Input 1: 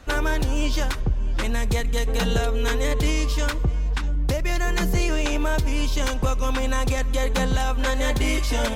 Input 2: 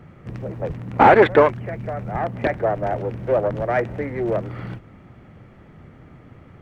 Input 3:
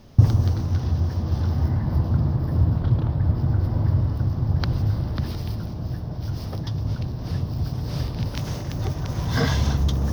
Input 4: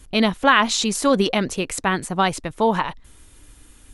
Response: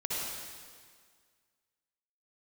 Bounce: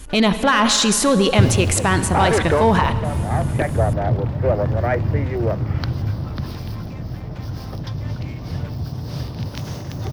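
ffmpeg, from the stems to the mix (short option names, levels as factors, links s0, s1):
-filter_complex "[0:a]lowpass=2700,aecho=1:1:6.8:0.65,asoftclip=type=tanh:threshold=0.075,volume=0.1[s0];[1:a]adelay=1150,volume=0.447[s1];[2:a]highpass=73,adelay=1200,volume=1.06[s2];[3:a]volume=1.26,asplit=2[s3][s4];[s4]volume=0.178[s5];[s0][s1][s3]amix=inputs=3:normalize=0,acontrast=72,alimiter=limit=0.316:level=0:latency=1:release=24,volume=1[s6];[4:a]atrim=start_sample=2205[s7];[s5][s7]afir=irnorm=-1:irlink=0[s8];[s2][s6][s8]amix=inputs=3:normalize=0"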